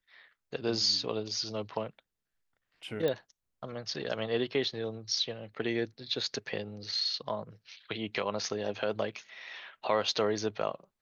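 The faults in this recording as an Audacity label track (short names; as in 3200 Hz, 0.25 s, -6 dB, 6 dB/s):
3.080000	3.080000	pop -19 dBFS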